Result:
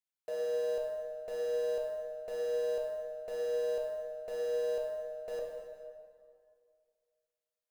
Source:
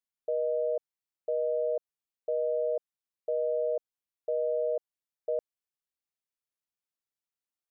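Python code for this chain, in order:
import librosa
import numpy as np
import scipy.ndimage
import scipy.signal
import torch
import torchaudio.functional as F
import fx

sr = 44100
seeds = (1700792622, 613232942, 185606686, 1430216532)

p1 = fx.low_shelf(x, sr, hz=320.0, db=-11.0)
p2 = fx.schmitt(p1, sr, flips_db=-53.0)
p3 = p1 + (p2 * 10.0 ** (-8.5 / 20.0))
p4 = fx.rev_plate(p3, sr, seeds[0], rt60_s=2.2, hf_ratio=0.7, predelay_ms=0, drr_db=-1.5)
y = p4 * 10.0 ** (-5.5 / 20.0)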